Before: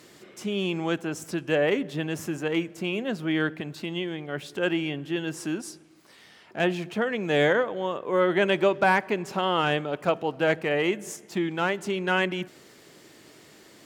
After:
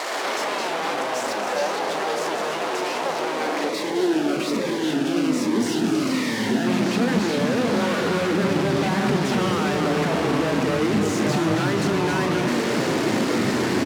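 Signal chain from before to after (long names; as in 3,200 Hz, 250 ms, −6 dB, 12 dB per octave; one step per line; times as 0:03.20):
sign of each sample alone
low-pass filter 4,100 Hz 12 dB per octave
parametric band 3,200 Hz −6.5 dB 0.59 octaves
leveller curve on the samples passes 2
high-pass filter sweep 730 Hz → 230 Hz, 0:03.20–0:04.50
delay with pitch and tempo change per echo 118 ms, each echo −4 semitones, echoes 3
loudspeakers that aren't time-aligned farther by 13 metres −11 dB, 92 metres −9 dB
0:03.69–0:06.67: phaser whose notches keep moving one way falling 1.2 Hz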